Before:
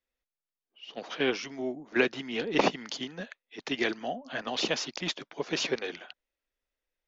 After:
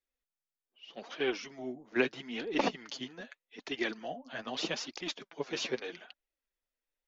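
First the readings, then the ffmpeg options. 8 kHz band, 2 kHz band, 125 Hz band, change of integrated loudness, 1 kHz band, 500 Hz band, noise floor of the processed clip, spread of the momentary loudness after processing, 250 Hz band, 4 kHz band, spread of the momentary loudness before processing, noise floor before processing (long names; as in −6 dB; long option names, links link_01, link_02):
can't be measured, −5.0 dB, −7.0 dB, −5.0 dB, −5.0 dB, −4.5 dB, below −85 dBFS, 17 LU, −4.5 dB, −5.5 dB, 16 LU, below −85 dBFS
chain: -af "flanger=delay=2.2:depth=7.2:regen=20:speed=0.8:shape=triangular,volume=-2dB" -ar 48000 -c:a aac -b:a 192k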